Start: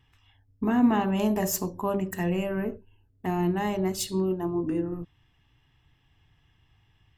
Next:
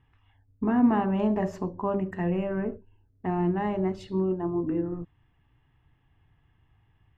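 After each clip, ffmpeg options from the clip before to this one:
-af "lowpass=1.8k"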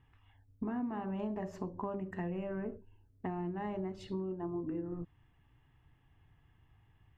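-af "acompressor=threshold=-34dB:ratio=6,volume=-1.5dB"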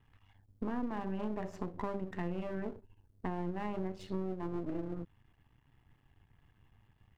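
-af "aeval=exprs='if(lt(val(0),0),0.251*val(0),val(0))':c=same,volume=3dB"

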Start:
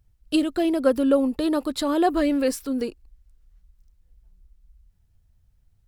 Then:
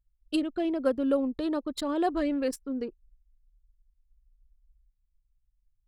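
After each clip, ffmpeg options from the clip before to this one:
-af "anlmdn=25.1,volume=-6.5dB"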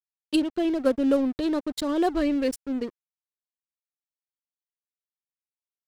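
-af "aeval=exprs='sgn(val(0))*max(abs(val(0))-0.00631,0)':c=same,equalizer=f=990:t=o:w=2.3:g=-5,volume=7dB"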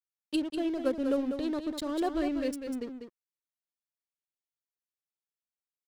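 -af "aecho=1:1:196:0.422,volume=-7dB"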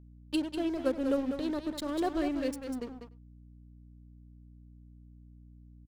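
-filter_complex "[0:a]aeval=exprs='sgn(val(0))*max(abs(val(0))-0.00376,0)':c=same,asplit=2[a][b];[b]adelay=99.13,volume=-21dB,highshelf=f=4k:g=-2.23[c];[a][c]amix=inputs=2:normalize=0,aeval=exprs='val(0)+0.00251*(sin(2*PI*60*n/s)+sin(2*PI*2*60*n/s)/2+sin(2*PI*3*60*n/s)/3+sin(2*PI*4*60*n/s)/4+sin(2*PI*5*60*n/s)/5)':c=same"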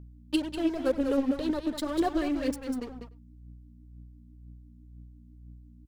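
-af "aphaser=in_gain=1:out_gain=1:delay=4.9:decay=0.47:speed=2:type=triangular,volume=2dB"

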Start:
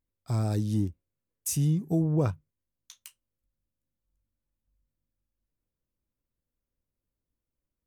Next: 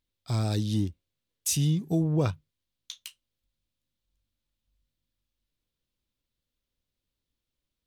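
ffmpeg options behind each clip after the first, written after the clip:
-af "equalizer=f=3.6k:w=1.1:g=13"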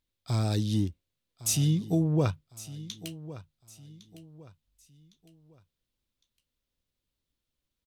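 -af "aecho=1:1:1108|2216|3324:0.15|0.0539|0.0194"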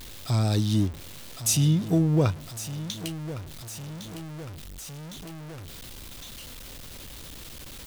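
-af "aeval=exprs='val(0)+0.5*0.0126*sgn(val(0))':c=same,volume=3dB"

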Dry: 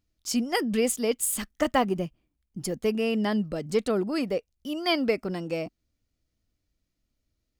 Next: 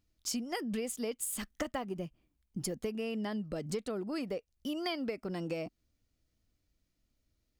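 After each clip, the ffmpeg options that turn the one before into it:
-af "acompressor=threshold=-33dB:ratio=10"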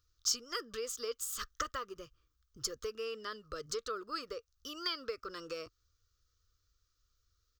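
-af "firequalizer=gain_entry='entry(100,0);entry(180,-25);entry(460,-1);entry(760,-25);entry(1200,12);entry(2100,-8);entry(3500,3);entry(6100,7);entry(9700,-11);entry(16000,4)':delay=0.05:min_phase=1,volume=1dB"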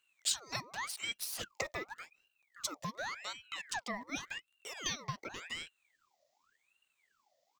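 -af "aeval=exprs='val(0)*sin(2*PI*1700*n/s+1700*0.65/0.88*sin(2*PI*0.88*n/s))':c=same,volume=2dB"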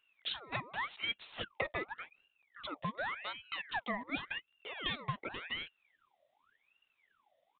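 -af "aresample=8000,aresample=44100,volume=2.5dB"

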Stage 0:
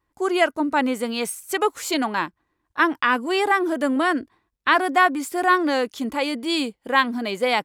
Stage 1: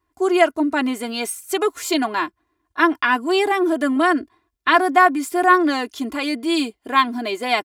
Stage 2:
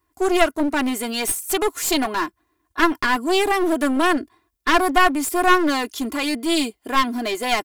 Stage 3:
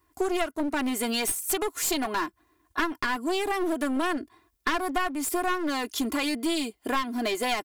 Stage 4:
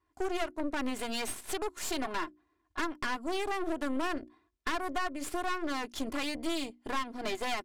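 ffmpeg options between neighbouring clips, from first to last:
-af "highpass=47,aecho=1:1:2.9:0.77"
-af "highshelf=f=7.6k:g=10.5,aeval=exprs='clip(val(0),-1,0.0708)':c=same,volume=1dB"
-af "acompressor=threshold=-28dB:ratio=4,volume=2.5dB"
-af "bandreject=f=60:t=h:w=6,bandreject=f=120:t=h:w=6,bandreject=f=180:t=h:w=6,bandreject=f=240:t=h:w=6,bandreject=f=300:t=h:w=6,bandreject=f=360:t=h:w=6,aeval=exprs='0.237*(cos(1*acos(clip(val(0)/0.237,-1,1)))-cos(1*PI/2))+0.0299*(cos(8*acos(clip(val(0)/0.237,-1,1)))-cos(8*PI/2))':c=same,adynamicsmooth=sensitivity=6.5:basefreq=5.8k,volume=-8dB"

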